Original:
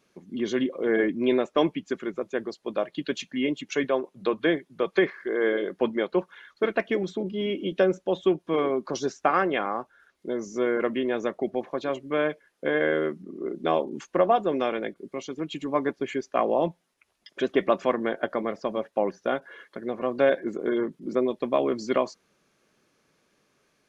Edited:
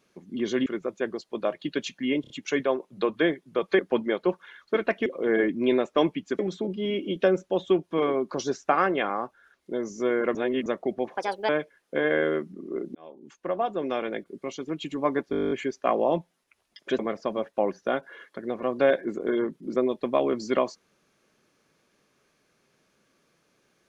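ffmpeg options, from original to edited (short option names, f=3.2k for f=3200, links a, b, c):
-filter_complex "[0:a]asplit=24[a][b][c][d][e][f][g][h][i][j][k][l][m][n][o][p][q][r][s][t][u][v][w][x];[a]atrim=end=0.662[y];[b]atrim=start=1.988:end=3.572[z];[c]atrim=start=3.538:end=3.572[aa];[d]atrim=start=3.538:end=3.572[ab];[e]atrim=start=3.538:end=5.032[ac];[f]atrim=start=5.678:end=6.952[ad];[g]atrim=start=0.658:end=1.992[ae];[h]atrim=start=6.948:end=10.912[af];[i]atrim=start=10.908:end=11.222,asetpts=PTS-STARTPTS,areverse[ag];[j]atrim=start=11.218:end=11.734[ah];[k]atrim=start=11.73:end=12.19,asetpts=PTS-STARTPTS,asetrate=63504,aresample=44100[ai];[l]atrim=start=12.186:end=13.65,asetpts=PTS-STARTPTS,afade=t=out:st=1.46:d=0.004:c=hsin[aj];[m]atrim=start=13.65:end=16.032,asetpts=PTS-STARTPTS,afade=t=in:d=1.33[ak];[n]atrim=start=16.008:end=16.032[al];[o]atrim=start=16.008:end=16.032[am];[p]atrim=start=16.008:end=16.032[an];[q]atrim=start=16.008:end=16.032[ao];[r]atrim=start=16.008:end=16.032[ap];[s]atrim=start=16.008:end=16.032[aq];[t]atrim=start=16.008:end=16.032[ar];[u]atrim=start=16.008:end=16.032[as];[v]atrim=start=16.008:end=16.032[at];[w]atrim=start=16.008:end=17.492[au];[x]atrim=start=18.378[av];[y][z]acrossfade=d=0.004:c1=hsin:c2=hsin[aw];[aw][aa]acrossfade=d=0.004:c1=hsin:c2=hsin[ax];[ax][ab]acrossfade=d=0.004:c1=hsin:c2=hsin[ay];[ay][ac]acrossfade=d=0.004:c1=hsin:c2=hsin[az];[az][ad]acrossfade=d=0.004:c1=hsin:c2=hsin[ba];[ba][ae]acrossfade=d=0.004:c1=hsin:c2=hsin[bb];[bb][af]acrossfade=d=0.004:c1=hsin:c2=hsin[bc];[bc][ag]acrossfade=d=0.004:c1=hsin:c2=hsin[bd];[bd][ah]acrossfade=d=0.004:c1=hsin:c2=hsin[be];[be][ai]acrossfade=d=0.004:c1=hsin:c2=hsin[bf];[aj][ak]concat=n=2:v=0:a=1[bg];[bf][bg]acrossfade=d=0.004:c1=hsin:c2=hsin[bh];[bh][al]acrossfade=d=0.004:c1=hsin:c2=hsin[bi];[bi][am]acrossfade=d=0.004:c1=hsin:c2=hsin[bj];[bj][an]acrossfade=d=0.004:c1=hsin:c2=hsin[bk];[bk][ao]acrossfade=d=0.004:c1=hsin:c2=hsin[bl];[bl][ap]acrossfade=d=0.004:c1=hsin:c2=hsin[bm];[bm][aq]acrossfade=d=0.004:c1=hsin:c2=hsin[bn];[bn][ar]acrossfade=d=0.004:c1=hsin:c2=hsin[bo];[bo][as]acrossfade=d=0.004:c1=hsin:c2=hsin[bp];[bp][at]acrossfade=d=0.004:c1=hsin:c2=hsin[bq];[bq][au]acrossfade=d=0.004:c1=hsin:c2=hsin[br];[br][av]acrossfade=d=0.004:c1=hsin:c2=hsin"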